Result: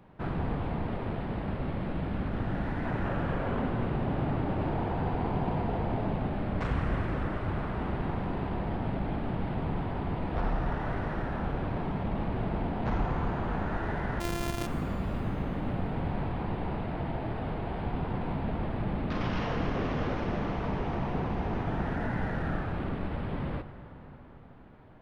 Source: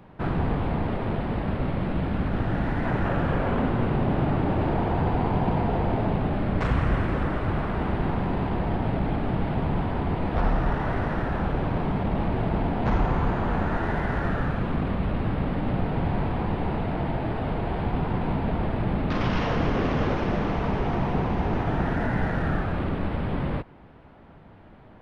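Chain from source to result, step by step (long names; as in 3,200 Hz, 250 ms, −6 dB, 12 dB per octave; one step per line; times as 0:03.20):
0:14.20–0:14.67: samples sorted by size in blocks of 128 samples
convolution reverb RT60 5.3 s, pre-delay 23 ms, DRR 11.5 dB
level −6.5 dB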